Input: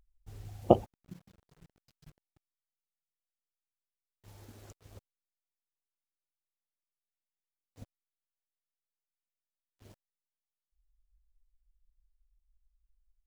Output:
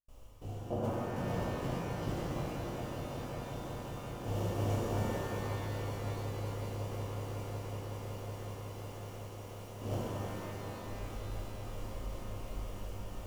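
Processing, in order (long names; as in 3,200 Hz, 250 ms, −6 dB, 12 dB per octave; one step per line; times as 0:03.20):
compressor on every frequency bin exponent 0.6
parametric band 750 Hz −3 dB
reversed playback
downward compressor 8 to 1, threshold −48 dBFS, peak gain reduction 32 dB
reversed playback
gate pattern ".xx..xxxx" 181 BPM −60 dB
on a send: echo that builds up and dies away 185 ms, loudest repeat 8, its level −14 dB
on the sum: reverb with rising layers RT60 3.8 s, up +12 semitones, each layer −8 dB, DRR −9.5 dB
level +8.5 dB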